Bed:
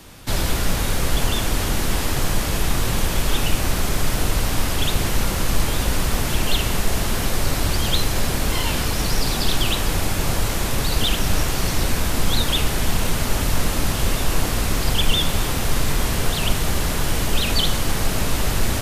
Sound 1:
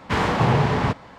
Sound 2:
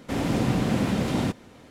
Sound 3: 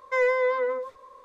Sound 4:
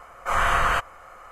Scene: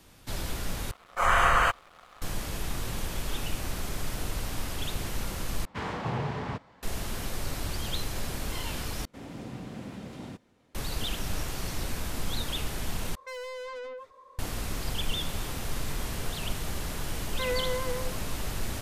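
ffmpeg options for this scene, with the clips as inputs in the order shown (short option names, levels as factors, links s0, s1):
-filter_complex "[3:a]asplit=2[s0][s1];[0:a]volume=0.237[s2];[4:a]aeval=exprs='sgn(val(0))*max(abs(val(0))-0.00473,0)':c=same[s3];[s0]asoftclip=type=tanh:threshold=0.0224[s4];[s2]asplit=5[s5][s6][s7][s8][s9];[s5]atrim=end=0.914[s10];[s3]atrim=end=1.31,asetpts=PTS-STARTPTS,volume=0.944[s11];[s6]atrim=start=2.216:end=5.654[s12];[1:a]atrim=end=1.18,asetpts=PTS-STARTPTS,volume=0.224[s13];[s7]atrim=start=6.826:end=9.054[s14];[2:a]atrim=end=1.7,asetpts=PTS-STARTPTS,volume=0.15[s15];[s8]atrim=start=10.746:end=13.154[s16];[s4]atrim=end=1.24,asetpts=PTS-STARTPTS,volume=0.596[s17];[s9]atrim=start=14.386[s18];[s1]atrim=end=1.24,asetpts=PTS-STARTPTS,volume=0.355,afade=t=in:d=0.004:c=hsin,afade=t=out:st=1.236:d=0.004:c=hsin,adelay=17270[s19];[s10][s11]acrossfade=d=0.004:c1=hsin:c2=hsin[s20];[s20][s12]acrossfade=d=0.004:c1=hsin:c2=hsin[s21];[s21][s13]acrossfade=d=0.004:c1=hsin:c2=hsin[s22];[s22][s14]acrossfade=d=0.004:c1=hsin:c2=hsin[s23];[s23][s15]acrossfade=d=0.004:c1=hsin:c2=hsin[s24];[s24][s16]acrossfade=d=0.004:c1=hsin:c2=hsin[s25];[s25][s17]acrossfade=d=0.004:c1=hsin:c2=hsin[s26];[s26][s18]acrossfade=d=0.004:c1=hsin:c2=hsin[s27];[s27][s19]amix=inputs=2:normalize=0"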